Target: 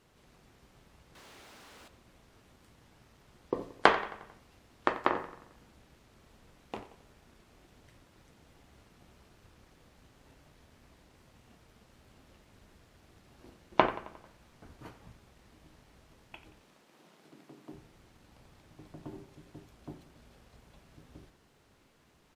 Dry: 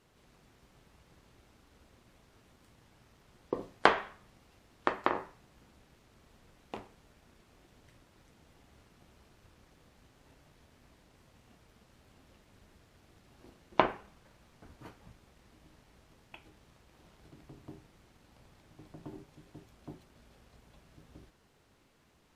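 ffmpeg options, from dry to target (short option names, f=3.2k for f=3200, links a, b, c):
-filter_complex "[0:a]asettb=1/sr,asplit=3[a][b][c];[a]atrim=end=1.154[d];[b]atrim=start=1.15:end=1.88,asetpts=PTS-STARTPTS,afade=t=in:d=0.004:c=qsin,afade=t=out:st=0.726:d=0.004:c=qsin,asplit=2[e][f];[f]highpass=f=720:p=1,volume=28dB,asoftclip=type=tanh:threshold=-49dB[g];[e][g]amix=inputs=2:normalize=0,lowpass=f=7.4k:p=1,volume=-6dB[h];[c]atrim=start=1.876[i];[d][h]acrossfade=d=0.004:c1=hsin:c2=qsin[j];[j][i]acrossfade=d=0.004:c1=qsin:c2=hsin,asettb=1/sr,asplit=3[k][l][m];[k]atrim=end=16.614[n];[l]atrim=start=16.61:end=17.73,asetpts=PTS-STARTPTS,afade=t=in:d=0.004:c=qsin,afade=t=out:st=1.116:d=0.004:c=qsin,highpass=f=180:w=0.5412,highpass=f=180:w=1.3066[o];[m]atrim=start=17.726[p];[n][o]acrossfade=d=0.004:c1=hsin:c2=qsin[q];[q][p]acrossfade=d=0.004:c1=qsin:c2=hsin,asplit=2[r][s];[s]adelay=89,lowpass=f=4.8k:p=1,volume=-15dB,asplit=2[t][u];[u]adelay=89,lowpass=f=4.8k:p=1,volume=0.54,asplit=2[v][w];[w]adelay=89,lowpass=f=4.8k:p=1,volume=0.54,asplit=2[x][y];[y]adelay=89,lowpass=f=4.8k:p=1,volume=0.54,asplit=2[z][aa];[aa]adelay=89,lowpass=f=4.8k:p=1,volume=0.54[ab];[r][t][v][x][z][ab]amix=inputs=6:normalize=0,volume=1.5dB"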